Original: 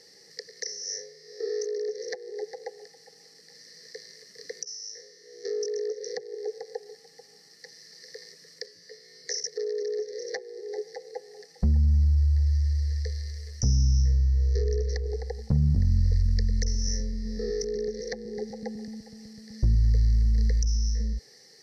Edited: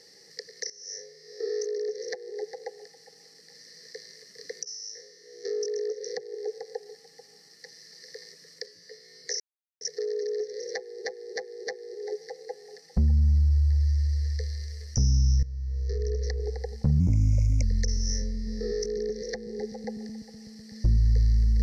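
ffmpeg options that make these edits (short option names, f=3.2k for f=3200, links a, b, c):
-filter_complex "[0:a]asplit=9[a][b][c][d][e][f][g][h][i];[a]atrim=end=0.7,asetpts=PTS-STARTPTS,afade=t=out:st=0.696:d=0.004:c=hsin:silence=0.16788[j];[b]atrim=start=0.7:end=9.4,asetpts=PTS-STARTPTS,afade=t=in:d=0.66:c=qsin:silence=0.16788,afade=t=out:st=8.696:d=0.004:c=hsin,apad=pad_dur=0.41[k];[c]atrim=start=9.4:end=10.642,asetpts=PTS-STARTPTS,afade=t=in:d=0.004:c=hsin[l];[d]atrim=start=10.328:end=10.642[m];[e]atrim=start=10.328:end=10.642[n];[f]atrim=start=10.328:end=14.09,asetpts=PTS-STARTPTS,afade=t=out:st=3.758:d=0.004:c=hsin:silence=0.133352[o];[g]atrim=start=14.09:end=15.664,asetpts=PTS-STARTPTS,afade=t=in:d=0.9:silence=0.133352[p];[h]atrim=start=15.66:end=16.41,asetpts=PTS-STARTPTS,asetrate=52920,aresample=44100,atrim=end_sample=27562,asetpts=PTS-STARTPTS[q];[i]atrim=start=16.406[r];[j][k][l]concat=n=3:v=0:a=1[s];[s][m]acrossfade=d=0.004:c1=hsin:c2=hsin[t];[t][n]acrossfade=d=0.004:c1=hsin:c2=hsin[u];[o][p]concat=n=2:v=0:a=1[v];[u][v]acrossfade=d=0.004:c1=hsin:c2=hsin[w];[w][q]acrossfade=d=0.004:c1=hsin:c2=hsin[x];[x][r]acrossfade=d=0.004:c1=hsin:c2=hsin"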